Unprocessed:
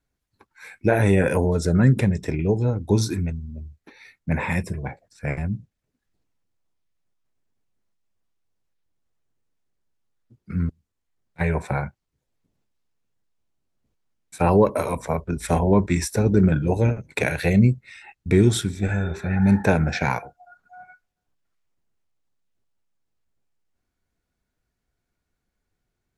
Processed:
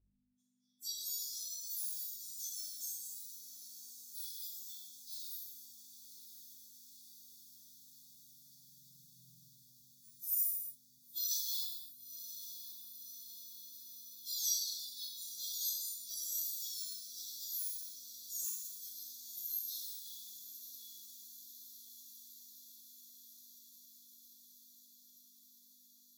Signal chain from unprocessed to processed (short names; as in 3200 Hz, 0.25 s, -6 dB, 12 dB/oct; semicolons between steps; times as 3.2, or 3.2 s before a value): spectrum mirrored in octaves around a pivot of 1600 Hz; Doppler pass-by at 9.12, 11 m/s, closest 1.6 m; on a send: diffused feedback echo 1.045 s, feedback 75%, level -11.5 dB; on the sum: FFT band-reject 180–3300 Hz; hum 50 Hz, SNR 24 dB; notches 50/100/150 Hz; non-linear reverb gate 0.34 s falling, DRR -7 dB; gain +12.5 dB